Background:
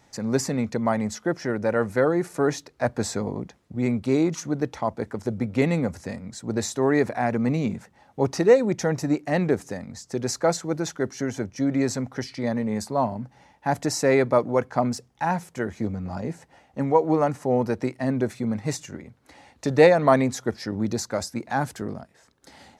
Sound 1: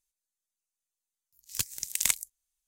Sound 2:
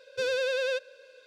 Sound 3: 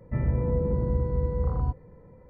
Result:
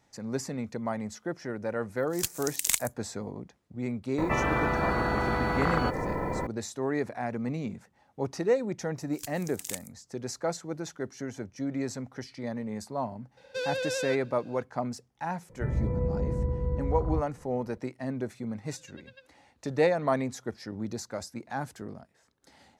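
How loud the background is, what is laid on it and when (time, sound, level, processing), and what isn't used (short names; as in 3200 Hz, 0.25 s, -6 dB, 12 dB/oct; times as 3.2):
background -9 dB
0.64 add 1 -0.5 dB
4.18 add 3 + spectral compressor 10:1
7.64 add 1 -11 dB
13.37 add 2 -3.5 dB
15.49 add 3 -3.5 dB
18.49 add 2 -13 dB + spectral noise reduction 23 dB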